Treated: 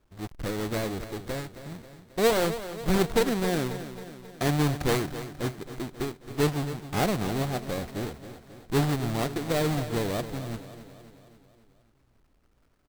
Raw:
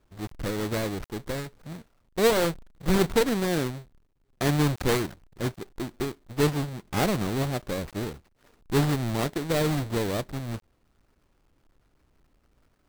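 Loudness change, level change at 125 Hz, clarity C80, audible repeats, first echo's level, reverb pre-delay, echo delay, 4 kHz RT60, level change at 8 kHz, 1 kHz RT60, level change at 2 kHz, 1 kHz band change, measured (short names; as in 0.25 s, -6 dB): -1.0 dB, -1.0 dB, none, 5, -12.5 dB, none, 0.269 s, none, -1.0 dB, none, -1.0 dB, 0.0 dB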